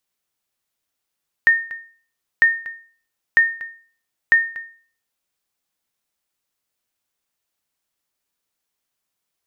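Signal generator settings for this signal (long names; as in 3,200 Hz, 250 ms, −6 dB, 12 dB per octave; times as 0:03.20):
ping with an echo 1,830 Hz, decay 0.44 s, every 0.95 s, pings 4, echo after 0.24 s, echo −18.5 dB −6 dBFS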